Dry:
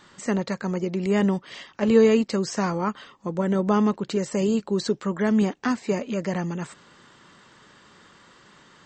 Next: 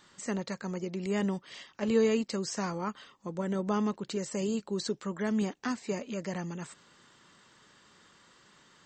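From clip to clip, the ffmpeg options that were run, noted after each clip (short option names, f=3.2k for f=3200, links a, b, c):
-af "highshelf=f=3.9k:g=7.5,volume=-9dB"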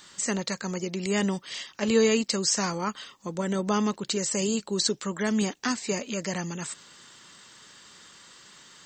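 -af "highshelf=f=2.5k:g=11.5,volume=3.5dB"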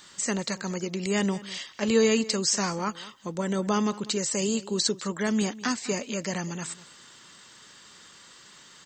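-filter_complex "[0:a]asplit=2[a][b];[b]adelay=198.3,volume=-18dB,highshelf=f=4k:g=-4.46[c];[a][c]amix=inputs=2:normalize=0"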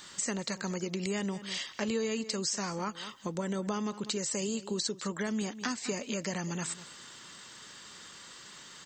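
-af "acompressor=threshold=-33dB:ratio=4,volume=1.5dB"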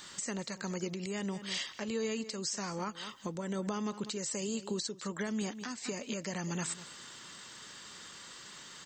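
-af "alimiter=level_in=1dB:limit=-24dB:level=0:latency=1:release=332,volume=-1dB"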